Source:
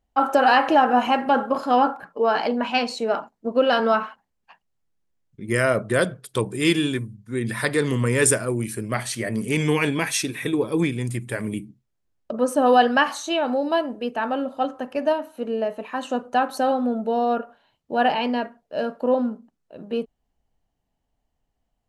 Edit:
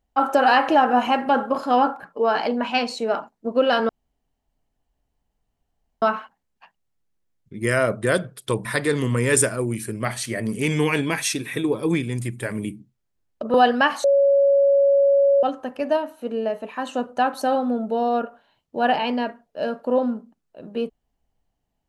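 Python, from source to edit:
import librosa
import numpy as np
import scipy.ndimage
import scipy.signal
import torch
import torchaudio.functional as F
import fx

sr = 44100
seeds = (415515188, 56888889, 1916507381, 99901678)

y = fx.edit(x, sr, fx.insert_room_tone(at_s=3.89, length_s=2.13),
    fx.cut(start_s=6.52, length_s=1.02),
    fx.cut(start_s=12.43, length_s=0.27),
    fx.bleep(start_s=13.2, length_s=1.39, hz=558.0, db=-13.0), tone=tone)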